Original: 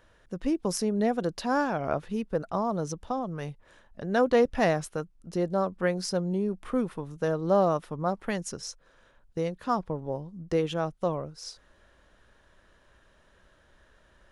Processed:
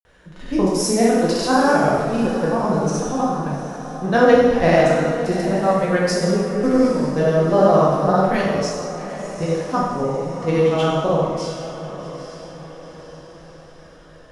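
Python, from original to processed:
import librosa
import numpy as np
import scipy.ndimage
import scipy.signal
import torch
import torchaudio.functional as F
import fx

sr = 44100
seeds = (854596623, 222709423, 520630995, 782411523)

y = fx.echo_diffused(x, sr, ms=820, feedback_pct=48, wet_db=-11.5)
y = fx.granulator(y, sr, seeds[0], grain_ms=100.0, per_s=20.0, spray_ms=100.0, spread_st=0)
y = fx.rev_plate(y, sr, seeds[1], rt60_s=1.3, hf_ratio=0.95, predelay_ms=0, drr_db=-4.5)
y = y * 10.0 ** (6.0 / 20.0)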